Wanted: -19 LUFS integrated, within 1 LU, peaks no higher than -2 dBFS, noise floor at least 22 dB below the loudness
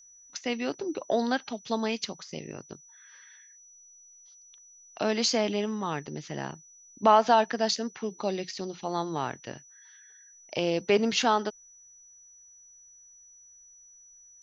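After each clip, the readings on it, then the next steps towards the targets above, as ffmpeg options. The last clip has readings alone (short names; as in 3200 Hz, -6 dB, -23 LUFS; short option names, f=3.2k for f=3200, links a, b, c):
steady tone 5900 Hz; tone level -52 dBFS; loudness -28.5 LUFS; peak -9.0 dBFS; loudness target -19.0 LUFS
-> -af "bandreject=f=5.9k:w=30"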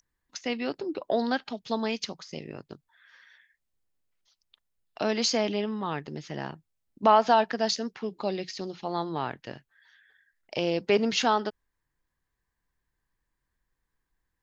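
steady tone none; loudness -28.5 LUFS; peak -9.0 dBFS; loudness target -19.0 LUFS
-> -af "volume=9.5dB,alimiter=limit=-2dB:level=0:latency=1"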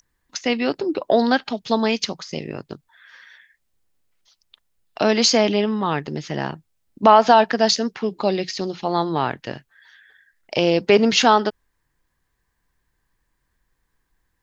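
loudness -19.5 LUFS; peak -2.0 dBFS; noise floor -73 dBFS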